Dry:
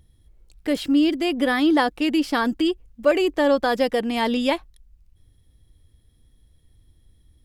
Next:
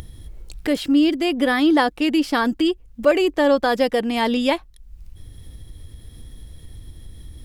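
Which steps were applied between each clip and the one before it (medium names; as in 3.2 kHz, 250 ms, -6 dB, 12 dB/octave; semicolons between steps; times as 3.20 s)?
upward compressor, threshold -25 dBFS; trim +2 dB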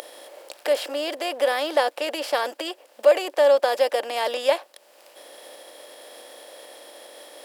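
spectral levelling over time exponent 0.6; ladder high-pass 510 Hz, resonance 60%; treble shelf 3.9 kHz +10 dB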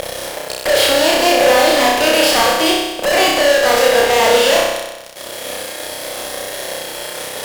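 fuzz box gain 36 dB, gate -44 dBFS; on a send: flutter echo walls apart 5.4 m, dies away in 1.1 s; on the sum: trim -1.5 dB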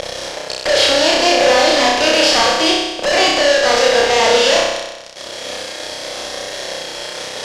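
resonant low-pass 5.7 kHz, resonance Q 1.7; trim -1 dB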